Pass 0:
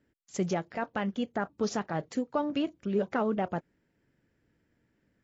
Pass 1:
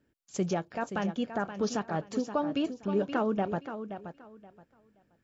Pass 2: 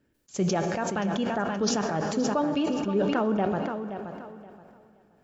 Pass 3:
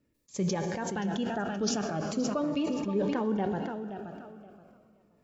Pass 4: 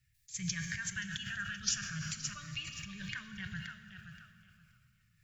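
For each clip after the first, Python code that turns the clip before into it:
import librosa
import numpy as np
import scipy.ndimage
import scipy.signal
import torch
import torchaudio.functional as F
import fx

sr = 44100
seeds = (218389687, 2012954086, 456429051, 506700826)

y1 = fx.notch(x, sr, hz=2000.0, q=8.2)
y1 = fx.echo_feedback(y1, sr, ms=525, feedback_pct=22, wet_db=-10)
y2 = fx.rev_plate(y1, sr, seeds[0], rt60_s=2.9, hf_ratio=0.85, predelay_ms=0, drr_db=11.5)
y2 = fx.sustainer(y2, sr, db_per_s=24.0)
y2 = y2 * librosa.db_to_amplitude(2.0)
y3 = fx.notch_cascade(y2, sr, direction='falling', hz=0.39)
y3 = y3 * librosa.db_to_amplitude(-3.0)
y4 = scipy.signal.sosfilt(scipy.signal.ellip(3, 1.0, 40, [130.0, 1700.0], 'bandstop', fs=sr, output='sos'), y3)
y4 = fx.dynamic_eq(y4, sr, hz=4600.0, q=1.2, threshold_db=-52.0, ratio=4.0, max_db=-5)
y4 = fx.rev_schroeder(y4, sr, rt60_s=2.1, comb_ms=32, drr_db=13.5)
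y4 = y4 * librosa.db_to_amplitude(5.5)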